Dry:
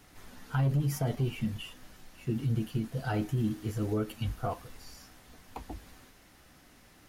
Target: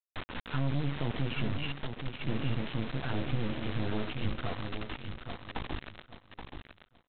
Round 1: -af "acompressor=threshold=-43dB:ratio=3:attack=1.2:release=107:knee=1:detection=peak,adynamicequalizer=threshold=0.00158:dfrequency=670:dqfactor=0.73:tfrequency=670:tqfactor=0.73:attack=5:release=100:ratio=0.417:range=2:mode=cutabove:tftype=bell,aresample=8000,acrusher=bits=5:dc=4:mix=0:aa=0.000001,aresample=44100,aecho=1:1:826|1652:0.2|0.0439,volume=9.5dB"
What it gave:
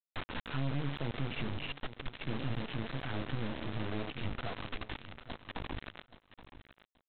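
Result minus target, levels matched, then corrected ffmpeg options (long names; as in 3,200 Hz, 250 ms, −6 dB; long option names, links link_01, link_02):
downward compressor: peak gain reduction +4.5 dB; echo-to-direct −6.5 dB
-af "acompressor=threshold=-36dB:ratio=3:attack=1.2:release=107:knee=1:detection=peak,adynamicequalizer=threshold=0.00158:dfrequency=670:dqfactor=0.73:tfrequency=670:tqfactor=0.73:attack=5:release=100:ratio=0.417:range=2:mode=cutabove:tftype=bell,aresample=8000,acrusher=bits=5:dc=4:mix=0:aa=0.000001,aresample=44100,aecho=1:1:826|1652|2478:0.422|0.0928|0.0204,volume=9.5dB"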